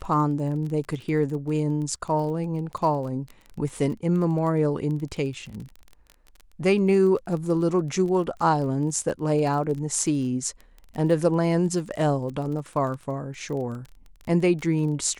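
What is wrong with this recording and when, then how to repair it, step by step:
crackle 21/s -32 dBFS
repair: de-click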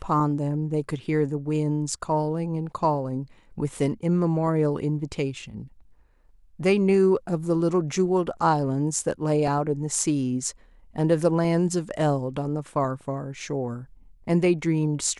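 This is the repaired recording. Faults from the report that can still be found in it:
none

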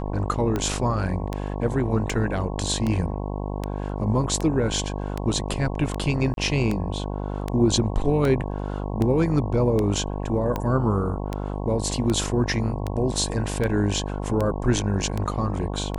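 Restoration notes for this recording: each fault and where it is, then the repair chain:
buzz 50 Hz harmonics 22 -29 dBFS
tick 78 rpm -13 dBFS
6.34–6.37 gap 32 ms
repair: de-click; de-hum 50 Hz, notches 22; interpolate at 6.34, 32 ms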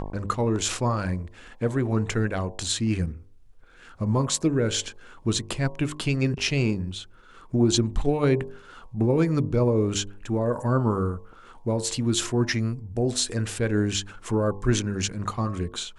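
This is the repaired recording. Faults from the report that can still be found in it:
none

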